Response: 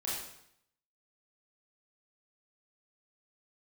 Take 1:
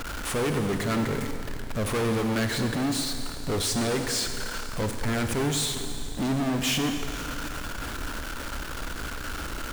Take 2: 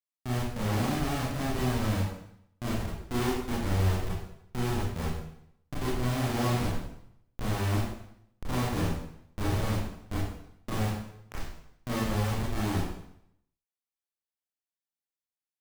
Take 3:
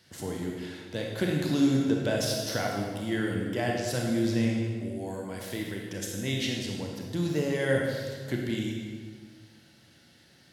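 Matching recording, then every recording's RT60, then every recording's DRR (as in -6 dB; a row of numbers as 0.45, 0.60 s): 2; 2.6, 0.70, 1.7 s; 5.5, -7.5, -1.0 dB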